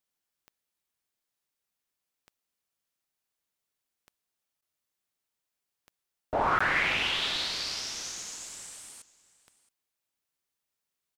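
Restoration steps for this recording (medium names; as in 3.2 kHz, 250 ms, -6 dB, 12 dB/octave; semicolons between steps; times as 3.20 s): de-click; interpolate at 4.61/6.59 s, 15 ms; inverse comb 670 ms -21 dB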